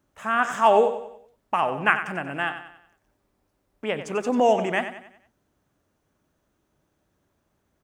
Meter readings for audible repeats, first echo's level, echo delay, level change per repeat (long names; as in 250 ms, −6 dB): 4, −10.5 dB, 93 ms, −7.5 dB